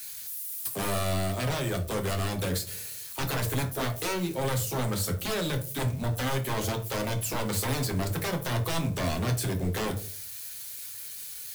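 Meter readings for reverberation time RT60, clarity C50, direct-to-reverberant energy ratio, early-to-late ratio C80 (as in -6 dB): 0.45 s, 12.0 dB, 3.0 dB, 17.5 dB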